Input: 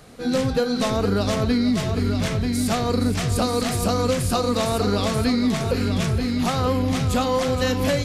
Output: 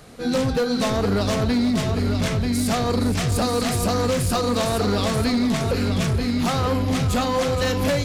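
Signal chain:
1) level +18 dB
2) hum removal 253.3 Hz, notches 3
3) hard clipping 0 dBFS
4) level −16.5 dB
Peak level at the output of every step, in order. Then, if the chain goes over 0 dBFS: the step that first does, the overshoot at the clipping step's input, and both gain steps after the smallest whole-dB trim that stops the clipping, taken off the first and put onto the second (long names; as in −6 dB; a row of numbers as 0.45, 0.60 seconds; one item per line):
+7.0, +7.5, 0.0, −16.5 dBFS
step 1, 7.5 dB
step 1 +10 dB, step 4 −8.5 dB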